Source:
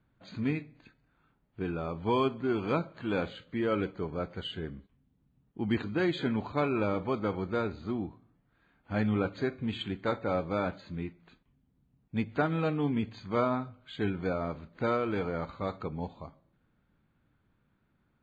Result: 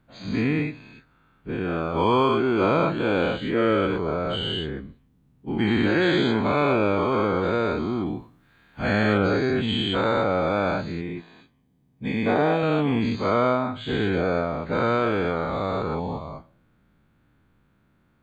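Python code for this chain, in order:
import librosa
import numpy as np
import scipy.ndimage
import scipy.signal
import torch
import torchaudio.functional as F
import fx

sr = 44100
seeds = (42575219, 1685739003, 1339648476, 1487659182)

y = fx.spec_dilate(x, sr, span_ms=240)
y = fx.high_shelf(y, sr, hz=2400.0, db=8.0, at=(8.06, 9.18))
y = fx.notch_comb(y, sr, f0_hz=1400.0, at=(11.01, 12.63))
y = y * 10.0 ** (3.0 / 20.0)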